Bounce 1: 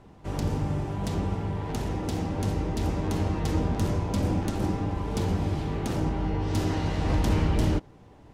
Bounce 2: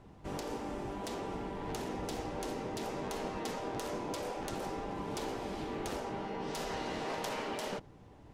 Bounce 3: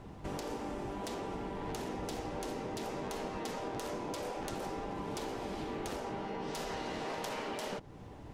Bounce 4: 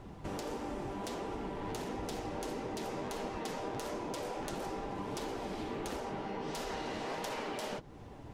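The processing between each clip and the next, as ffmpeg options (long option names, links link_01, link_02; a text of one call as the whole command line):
ffmpeg -i in.wav -af "afftfilt=real='re*lt(hypot(re,im),0.178)':imag='im*lt(hypot(re,im),0.178)':win_size=1024:overlap=0.75,volume=-4dB" out.wav
ffmpeg -i in.wav -af "acompressor=threshold=-46dB:ratio=2.5,volume=6.5dB" out.wav
ffmpeg -i in.wav -af "flanger=delay=2:depth=8.4:regen=-48:speed=1.5:shape=triangular,volume=4dB" out.wav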